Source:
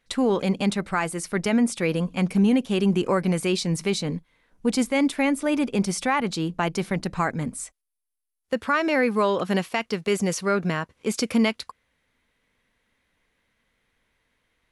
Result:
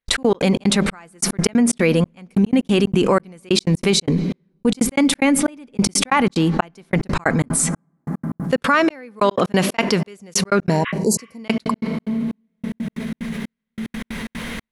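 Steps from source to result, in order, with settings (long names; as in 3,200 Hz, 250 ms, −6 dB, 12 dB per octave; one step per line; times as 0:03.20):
on a send at −21.5 dB: convolution reverb RT60 3.5 s, pre-delay 3 ms
on the sum: gate pattern ".x.x.xx.xxx..." 184 BPM −60 dB
healed spectral selection 0:10.72–0:11.36, 1,000–3,900 Hz both
envelope flattener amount 70%
level +3 dB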